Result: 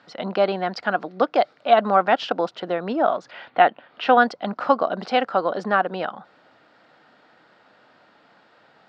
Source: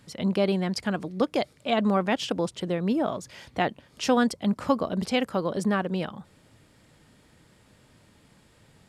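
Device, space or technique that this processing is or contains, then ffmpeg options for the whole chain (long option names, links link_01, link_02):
phone earpiece: -filter_complex "[0:a]highpass=370,equalizer=frequency=400:width_type=q:width=4:gain=-3,equalizer=frequency=730:width_type=q:width=4:gain=8,equalizer=frequency=1400:width_type=q:width=4:gain=8,equalizer=frequency=2300:width_type=q:width=4:gain=-4,equalizer=frequency=3300:width_type=q:width=4:gain=-4,lowpass=frequency=4200:width=0.5412,lowpass=frequency=4200:width=1.3066,asettb=1/sr,asplit=3[link_01][link_02][link_03];[link_01]atrim=end=3.314[link_04];[link_02]atrim=start=3.31:end=4.18,asetpts=PTS-STARTPTS,afade=type=in:duration=0.004:curve=qsin,afade=type=out:start_time=0.866:duration=0.004:curve=qsin,highshelf=frequency=4300:width_type=q:width=1.5:gain=-11[link_05];[link_03]atrim=start=4.176[link_06];[link_04][link_05]acrossfade=duration=0.004:curve1=hsin:curve2=qsin[link_07];[link_07][link_06]acrossfade=duration=0.004:curve1=qsin:curve2=hsin,volume=5.5dB"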